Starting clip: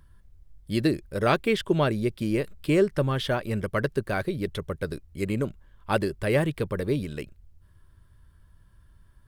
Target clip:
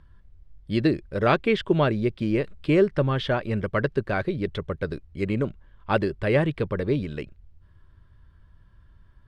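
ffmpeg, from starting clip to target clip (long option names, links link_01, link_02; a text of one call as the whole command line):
ffmpeg -i in.wav -af "lowpass=3800,volume=2dB" out.wav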